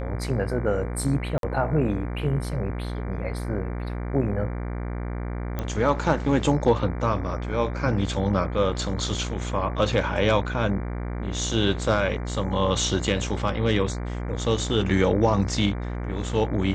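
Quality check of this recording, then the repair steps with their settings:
mains buzz 60 Hz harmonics 39 −30 dBFS
0:01.38–0:01.43: drop-out 52 ms
0:05.59: click −15 dBFS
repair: click removal
hum removal 60 Hz, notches 39
repair the gap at 0:01.38, 52 ms

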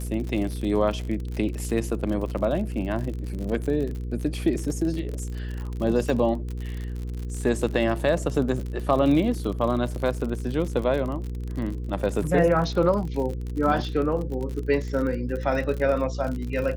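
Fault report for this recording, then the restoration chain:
surface crackle 54 per second −30 dBFS
mains hum 60 Hz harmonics 8 −31 dBFS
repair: click removal
hum removal 60 Hz, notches 8

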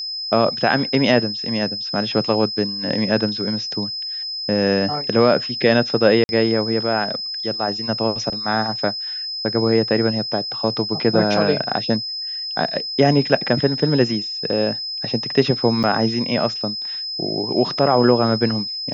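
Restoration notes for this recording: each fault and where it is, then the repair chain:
whistle 5,100 Hz −25 dBFS
0:06.24–0:06.29: drop-out 51 ms
0:15.83–0:15.84: drop-out 7.3 ms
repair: notch filter 5,100 Hz, Q 30
repair the gap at 0:06.24, 51 ms
repair the gap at 0:15.83, 7.3 ms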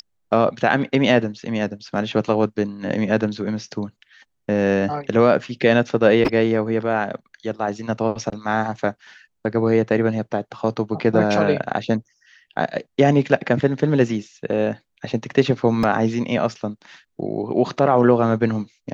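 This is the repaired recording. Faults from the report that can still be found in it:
none of them is left

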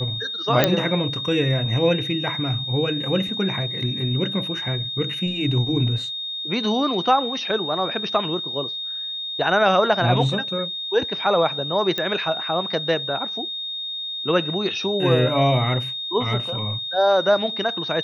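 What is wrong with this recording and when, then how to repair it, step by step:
whistle 3,700 Hz −27 dBFS
0:00.64: click −1 dBFS
0:11.98: click −11 dBFS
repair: click removal
notch filter 3,700 Hz, Q 30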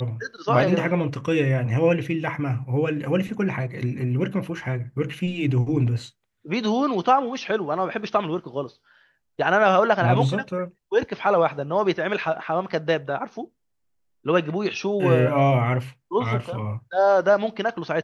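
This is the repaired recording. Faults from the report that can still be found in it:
none of them is left

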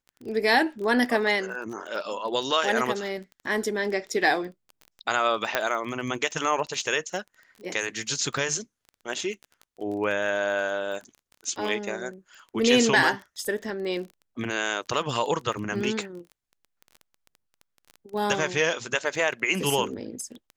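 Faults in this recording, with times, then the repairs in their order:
surface crackle 21 per second −34 dBFS
0:05.55: click −7 dBFS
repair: click removal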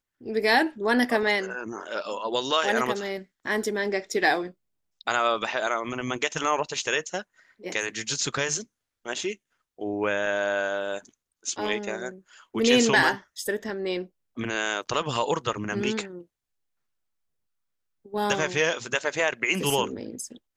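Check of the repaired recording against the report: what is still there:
none of them is left

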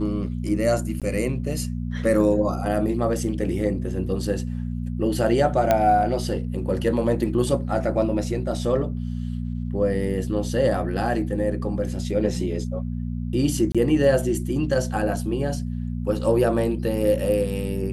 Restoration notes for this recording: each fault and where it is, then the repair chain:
mains hum 60 Hz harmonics 4 −28 dBFS
0:01.00–0:01.02: drop-out 17 ms
0:05.71: click −6 dBFS
0:13.72–0:13.75: drop-out 26 ms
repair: click removal
hum removal 60 Hz, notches 4
repair the gap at 0:01.00, 17 ms
repair the gap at 0:13.72, 26 ms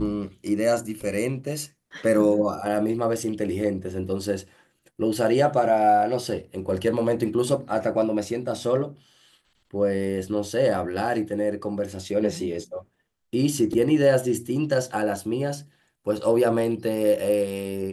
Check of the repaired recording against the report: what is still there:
none of them is left

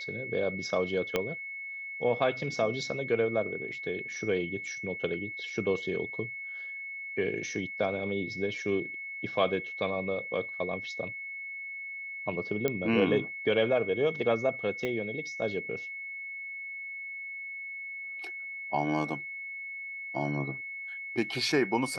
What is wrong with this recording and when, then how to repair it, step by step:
whistle 2,200 Hz −37 dBFS
0:01.16: click −13 dBFS
0:12.68: click −15 dBFS
0:14.85: click −20 dBFS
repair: click removal
notch filter 2,200 Hz, Q 30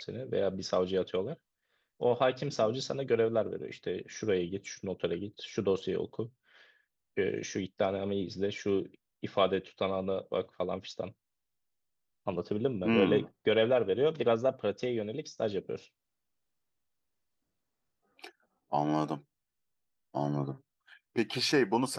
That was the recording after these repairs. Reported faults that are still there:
0:01.16: click
0:14.85: click

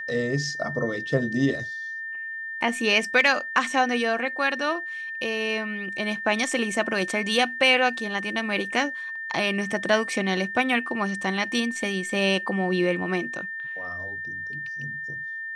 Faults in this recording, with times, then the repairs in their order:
whistle 1,800 Hz −31 dBFS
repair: notch filter 1,800 Hz, Q 30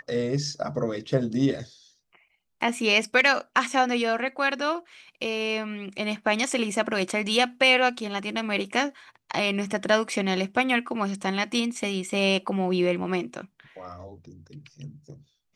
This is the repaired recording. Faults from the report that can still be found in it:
none of them is left

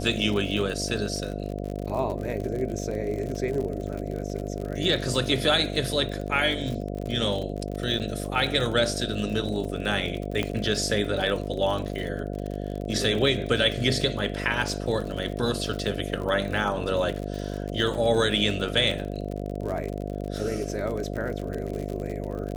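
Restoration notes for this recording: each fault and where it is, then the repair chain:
mains buzz 50 Hz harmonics 14 −32 dBFS
surface crackle 52 per second −31 dBFS
0:07.99–0:08.00: drop-out 8.3 ms
0:10.43: click −14 dBFS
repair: click removal
hum removal 50 Hz, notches 14
repair the gap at 0:07.99, 8.3 ms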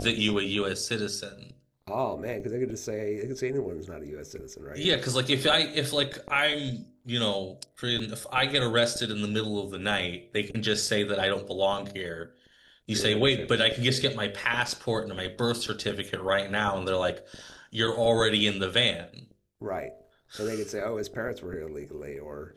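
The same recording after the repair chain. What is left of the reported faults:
0:10.43: click

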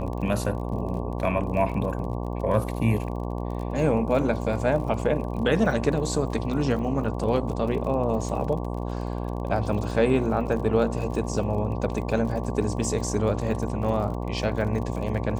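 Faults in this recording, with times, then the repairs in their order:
mains buzz 60 Hz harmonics 19 −30 dBFS
surface crackle 43 per second −34 dBFS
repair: click removal
hum removal 60 Hz, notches 19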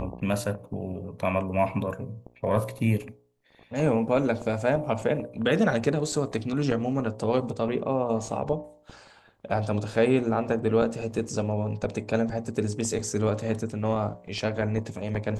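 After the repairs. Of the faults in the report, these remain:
none of them is left

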